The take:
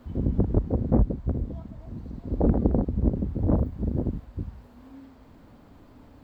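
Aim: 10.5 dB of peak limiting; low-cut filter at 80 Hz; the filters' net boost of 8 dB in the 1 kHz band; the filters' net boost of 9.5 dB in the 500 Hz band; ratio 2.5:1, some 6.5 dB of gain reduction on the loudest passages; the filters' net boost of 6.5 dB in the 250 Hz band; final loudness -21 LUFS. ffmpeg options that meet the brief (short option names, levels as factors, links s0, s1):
-af "highpass=80,equalizer=f=250:t=o:g=5.5,equalizer=f=500:t=o:g=8.5,equalizer=f=1000:t=o:g=6.5,acompressor=threshold=0.1:ratio=2.5,volume=2.99,alimiter=limit=0.376:level=0:latency=1"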